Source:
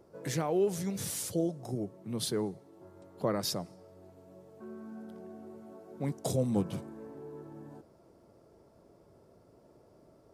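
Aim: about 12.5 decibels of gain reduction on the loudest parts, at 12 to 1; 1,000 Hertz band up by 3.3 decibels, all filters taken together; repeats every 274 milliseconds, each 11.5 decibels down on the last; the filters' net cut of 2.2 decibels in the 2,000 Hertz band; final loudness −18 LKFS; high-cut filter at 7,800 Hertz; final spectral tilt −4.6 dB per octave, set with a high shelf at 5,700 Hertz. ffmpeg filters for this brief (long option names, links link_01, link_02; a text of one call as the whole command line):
ffmpeg -i in.wav -af "lowpass=7800,equalizer=frequency=1000:width_type=o:gain=5.5,equalizer=frequency=2000:width_type=o:gain=-5.5,highshelf=frequency=5700:gain=7.5,acompressor=threshold=-36dB:ratio=12,aecho=1:1:274|548|822:0.266|0.0718|0.0194,volume=24.5dB" out.wav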